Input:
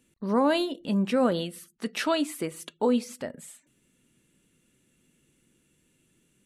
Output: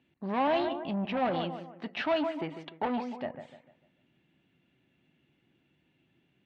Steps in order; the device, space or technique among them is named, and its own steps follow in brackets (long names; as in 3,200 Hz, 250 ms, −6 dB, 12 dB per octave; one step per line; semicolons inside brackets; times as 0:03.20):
dynamic equaliser 990 Hz, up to +4 dB, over −35 dBFS, Q 1.2
analogue delay pedal into a guitar amplifier (bucket-brigade delay 149 ms, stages 2,048, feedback 36%, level −11 dB; tube saturation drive 25 dB, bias 0.25; loudspeaker in its box 83–3,500 Hz, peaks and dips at 220 Hz −5 dB, 470 Hz −8 dB, 740 Hz +10 dB, 1,300 Hz −4 dB)